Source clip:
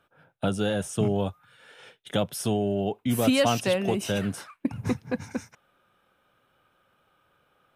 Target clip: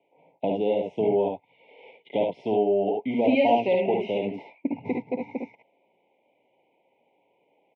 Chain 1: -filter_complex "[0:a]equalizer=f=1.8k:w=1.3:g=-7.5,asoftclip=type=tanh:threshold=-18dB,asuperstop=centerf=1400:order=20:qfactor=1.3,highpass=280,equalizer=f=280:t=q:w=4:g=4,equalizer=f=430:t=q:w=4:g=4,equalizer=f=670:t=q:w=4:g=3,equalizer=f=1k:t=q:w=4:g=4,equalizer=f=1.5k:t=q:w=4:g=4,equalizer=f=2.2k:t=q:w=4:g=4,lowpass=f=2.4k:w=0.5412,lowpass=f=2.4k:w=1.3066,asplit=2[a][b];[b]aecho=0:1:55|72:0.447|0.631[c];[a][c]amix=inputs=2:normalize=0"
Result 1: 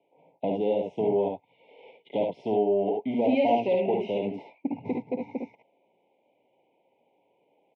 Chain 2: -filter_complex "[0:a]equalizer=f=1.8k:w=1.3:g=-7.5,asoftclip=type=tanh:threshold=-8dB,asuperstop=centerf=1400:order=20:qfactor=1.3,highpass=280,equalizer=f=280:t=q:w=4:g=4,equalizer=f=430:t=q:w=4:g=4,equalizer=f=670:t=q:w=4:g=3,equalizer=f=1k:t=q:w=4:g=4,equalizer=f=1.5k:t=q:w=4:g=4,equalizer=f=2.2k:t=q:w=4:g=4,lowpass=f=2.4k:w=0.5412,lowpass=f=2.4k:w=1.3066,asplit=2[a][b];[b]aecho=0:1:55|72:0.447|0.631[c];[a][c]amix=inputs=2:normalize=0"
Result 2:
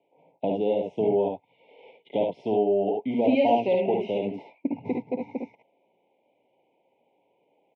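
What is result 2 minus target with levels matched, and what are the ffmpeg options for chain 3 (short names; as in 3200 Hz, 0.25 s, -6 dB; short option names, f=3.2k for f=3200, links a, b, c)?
2000 Hz band -4.0 dB
-filter_complex "[0:a]asoftclip=type=tanh:threshold=-8dB,asuperstop=centerf=1400:order=20:qfactor=1.3,highpass=280,equalizer=f=280:t=q:w=4:g=4,equalizer=f=430:t=q:w=4:g=4,equalizer=f=670:t=q:w=4:g=3,equalizer=f=1k:t=q:w=4:g=4,equalizer=f=1.5k:t=q:w=4:g=4,equalizer=f=2.2k:t=q:w=4:g=4,lowpass=f=2.4k:w=0.5412,lowpass=f=2.4k:w=1.3066,asplit=2[a][b];[b]aecho=0:1:55|72:0.447|0.631[c];[a][c]amix=inputs=2:normalize=0"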